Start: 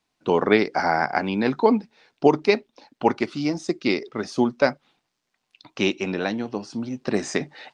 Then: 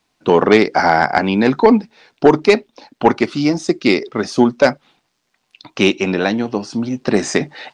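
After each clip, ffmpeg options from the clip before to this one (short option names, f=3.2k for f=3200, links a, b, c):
-af "aeval=exprs='0.75*sin(PI/2*1.58*val(0)/0.75)':c=same,volume=1dB"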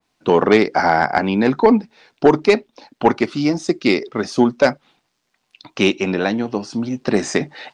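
-af "adynamicequalizer=threshold=0.0447:dfrequency=2100:dqfactor=0.7:tfrequency=2100:tqfactor=0.7:attack=5:release=100:ratio=0.375:range=1.5:mode=cutabove:tftype=highshelf,volume=-2dB"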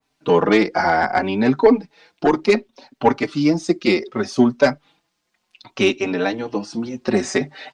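-filter_complex "[0:a]asplit=2[a][b];[b]adelay=4.7,afreqshift=0.66[c];[a][c]amix=inputs=2:normalize=1,volume=1.5dB"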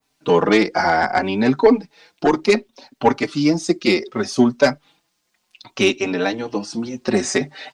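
-af "highshelf=f=5.7k:g=9"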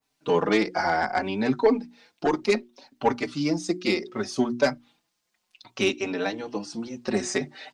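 -af "bandreject=f=60:t=h:w=6,bandreject=f=120:t=h:w=6,bandreject=f=180:t=h:w=6,bandreject=f=240:t=h:w=6,bandreject=f=300:t=h:w=6,bandreject=f=360:t=h:w=6,volume=-7dB"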